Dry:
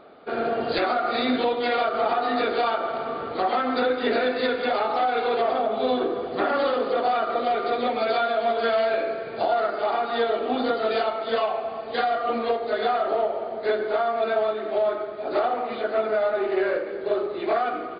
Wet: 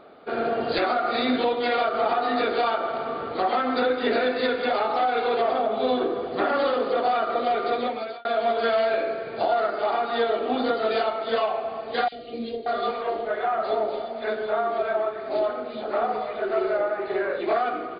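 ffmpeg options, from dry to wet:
ffmpeg -i in.wav -filter_complex "[0:a]asettb=1/sr,asplit=3[link_01][link_02][link_03];[link_01]atrim=end=12.084[link_04];[link_02]atrim=start=12.08:end=17.41,asetpts=PTS-STARTPTS,afade=type=in:duration=0.004:curve=qsin,afade=type=out:start_time=5.326:duration=0.004:curve=qsin,acrossover=split=450|2700[link_05][link_06][link_07];[link_05]adelay=40[link_08];[link_06]adelay=580[link_09];[link_08][link_09][link_07]amix=inputs=3:normalize=0,atrim=end_sample=235053[link_10];[link_03]atrim=start=17.406[link_11];[link_04][link_10]acrossfade=duration=0.004:curve1=hsin:curve2=qsin[link_12];[link_12][link_11]acrossfade=duration=0.004:curve1=qsin:curve2=hsin,asplit=2[link_13][link_14];[link_13]atrim=end=8.25,asetpts=PTS-STARTPTS,afade=type=out:start_time=7.75:duration=0.5[link_15];[link_14]atrim=start=8.25,asetpts=PTS-STARTPTS,afade=type=in:duration=0.004:curve=hsin[link_16];[link_15][link_16]concat=n=2:v=0:a=1" out.wav

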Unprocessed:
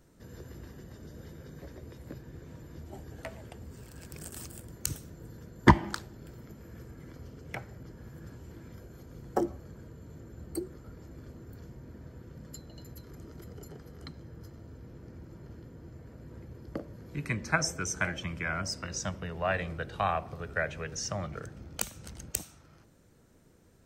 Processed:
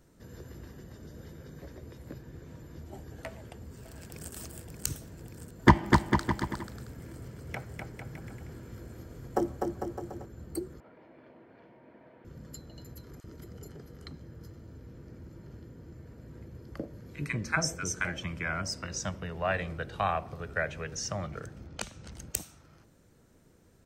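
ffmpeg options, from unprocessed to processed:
ffmpeg -i in.wav -filter_complex "[0:a]asplit=2[link_01][link_02];[link_02]afade=type=in:start_time=3.27:duration=0.01,afade=type=out:start_time=4.34:duration=0.01,aecho=0:1:580|1160|1740|2320|2900|3480|4060|4640|5220|5800|6380|6960:0.446684|0.335013|0.25126|0.188445|0.141333|0.106|0.0795001|0.0596251|0.0447188|0.0335391|0.0251543|0.0188657[link_03];[link_01][link_03]amix=inputs=2:normalize=0,asettb=1/sr,asplit=3[link_04][link_05][link_06];[link_04]atrim=end=5.604[link_07];[link_05]atrim=start=5.6:end=10.26,asetpts=PTS-STARTPTS,afade=type=in:duration=0.004:curve=qsin,afade=type=out:start_time=4.656:duration=0.004:curve=qsin,aecho=1:1:250|450|610|738|840.4|922.3:0.631|0.398|0.251|0.158|0.1|0.0631,atrim=end_sample=205506[link_08];[link_06]atrim=start=10.256[link_09];[link_07][link_08]acrossfade=duration=0.004:curve1=hsin:curve2=qsin[link_10];[link_10][link_09]acrossfade=duration=0.004:curve1=qsin:curve2=hsin,asettb=1/sr,asplit=3[link_11][link_12][link_13];[link_11]atrim=end=10.804[link_14];[link_12]atrim=start=10.8:end=12.25,asetpts=PTS-STARTPTS,afade=type=in:duration=0.004:curve=qsin,afade=type=out:start_time=1.446:duration=0.004:curve=qsin,highpass=340,equalizer=frequency=420:width_type=q:width=4:gain=-4,equalizer=frequency=650:width_type=q:width=4:gain=6,equalizer=frequency=910:width_type=q:width=4:gain=5,equalizer=frequency=1300:width_type=q:width=4:gain=-4,equalizer=frequency=2300:width_type=q:width=4:gain=5,lowpass=frequency=3100:width=0.5412,lowpass=frequency=3100:width=1.3066[link_15];[link_13]atrim=start=12.246[link_16];[link_14][link_15]acrossfade=duration=0.004:curve1=hsin:curve2=qsin[link_17];[link_17][link_16]acrossfade=duration=0.004:curve1=qsin:curve2=hsin,asettb=1/sr,asplit=3[link_18][link_19][link_20];[link_18]atrim=end=13.204[link_21];[link_19]atrim=start=13.2:end=18.05,asetpts=PTS-STARTPTS,afade=type=in:duration=0.004:curve=qsin,afade=type=out:start_time=4.846:duration=0.004:curve=qsin,acrossover=split=890[link_22][link_23];[link_22]adelay=40[link_24];[link_24][link_23]amix=inputs=2:normalize=0,atrim=end_sample=213885[link_25];[link_20]atrim=start=18.046[link_26];[link_21][link_25]acrossfade=duration=0.004:curve1=hsin:curve2=qsin[link_27];[link_27][link_26]acrossfade=duration=0.004:curve1=qsin:curve2=hsin,asettb=1/sr,asplit=3[link_28][link_29][link_30];[link_28]atrim=end=21.674[link_31];[link_29]atrim=start=21.67:end=22.12,asetpts=PTS-STARTPTS,afade=type=in:duration=0.004:curve=qsin,afade=type=out:start_time=0.446:duration=0.004:curve=qsin,lowpass=5600[link_32];[link_30]atrim=start=22.116[link_33];[link_31][link_32]acrossfade=duration=0.004:curve1=hsin:curve2=qsin[link_34];[link_34][link_33]acrossfade=duration=0.004:curve1=qsin:curve2=hsin" out.wav

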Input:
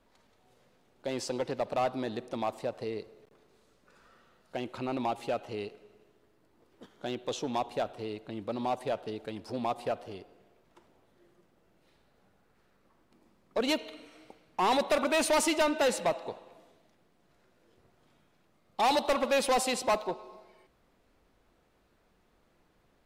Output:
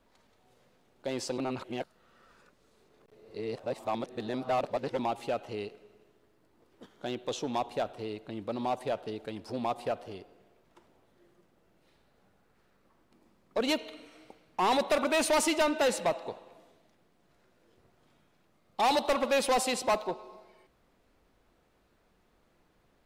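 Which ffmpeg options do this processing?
ffmpeg -i in.wav -filter_complex "[0:a]asplit=3[link_01][link_02][link_03];[link_01]atrim=end=1.382[link_04];[link_02]atrim=start=1.378:end=4.992,asetpts=PTS-STARTPTS,areverse[link_05];[link_03]atrim=start=4.988[link_06];[link_04][link_05]acrossfade=duration=0.004:curve1=hsin:curve2=hsin[link_07];[link_07][link_06]acrossfade=duration=0.004:curve1=hsin:curve2=hsin" out.wav

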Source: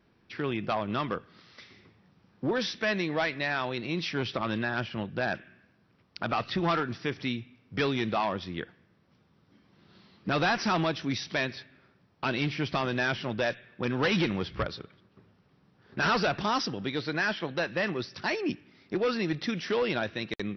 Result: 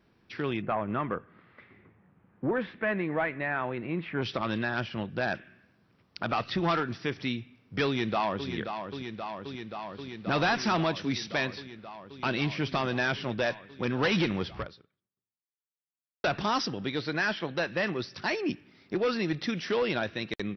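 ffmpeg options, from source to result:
ffmpeg -i in.wav -filter_complex "[0:a]asplit=3[link_01][link_02][link_03];[link_01]afade=type=out:start_time=0.61:duration=0.02[link_04];[link_02]lowpass=frequency=2200:width=0.5412,lowpass=frequency=2200:width=1.3066,afade=type=in:start_time=0.61:duration=0.02,afade=type=out:start_time=4.21:duration=0.02[link_05];[link_03]afade=type=in:start_time=4.21:duration=0.02[link_06];[link_04][link_05][link_06]amix=inputs=3:normalize=0,asplit=2[link_07][link_08];[link_08]afade=type=in:start_time=7.86:duration=0.01,afade=type=out:start_time=8.49:duration=0.01,aecho=0:1:530|1060|1590|2120|2650|3180|3710|4240|4770|5300|5830|6360:0.421697|0.358442|0.304676|0.258974|0.220128|0.187109|0.159043|0.135186|0.114908|0.0976721|0.0830212|0.0705681[link_09];[link_07][link_09]amix=inputs=2:normalize=0,asplit=2[link_10][link_11];[link_10]atrim=end=16.24,asetpts=PTS-STARTPTS,afade=type=out:start_time=14.52:duration=1.72:curve=exp[link_12];[link_11]atrim=start=16.24,asetpts=PTS-STARTPTS,afade=type=in:duration=0.004:curve=hsin[link_13];[link_12][link_13]concat=n=2:v=0:a=1" out.wav

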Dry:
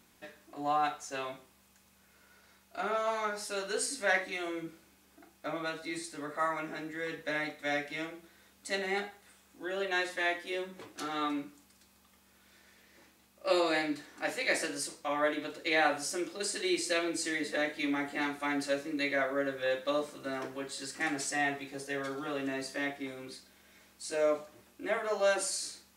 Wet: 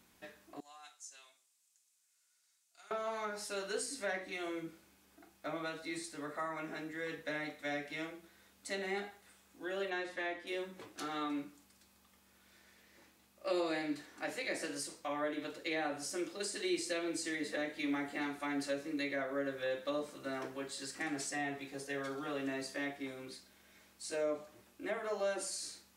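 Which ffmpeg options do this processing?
ffmpeg -i in.wav -filter_complex "[0:a]asettb=1/sr,asplit=3[link_01][link_02][link_03];[link_01]atrim=end=0.604[link_04];[link_02]atrim=start=0.6:end=2.91,asetpts=PTS-STARTPTS,afade=type=in:duration=0.004:curve=qsin,afade=type=out:start_time=2.306:duration=0.004:curve=qsin,bandpass=frequency=7700:width_type=q:width=1.7[link_05];[link_03]atrim=start=2.906[link_06];[link_04][link_05]acrossfade=duration=0.004:curve1=hsin:curve2=qsin[link_07];[link_07][link_06]acrossfade=duration=0.004:curve1=qsin:curve2=hsin,asettb=1/sr,asplit=3[link_08][link_09][link_10];[link_08]atrim=end=9.904[link_11];[link_09]atrim=start=9.9:end=10.47,asetpts=PTS-STARTPTS,afade=type=in:duration=0.004:curve=qsin,afade=type=out:start_time=0.566:duration=0.004:curve=qsin,lowpass=frequency=3400:poles=1[link_12];[link_10]atrim=start=10.466[link_13];[link_11][link_12]acrossfade=duration=0.004:curve1=hsin:curve2=qsin[link_14];[link_14][link_13]acrossfade=duration=0.004:curve1=qsin:curve2=hsin,acrossover=split=460[link_15][link_16];[link_16]acompressor=threshold=-35dB:ratio=4[link_17];[link_15][link_17]amix=inputs=2:normalize=0,volume=-3dB" out.wav

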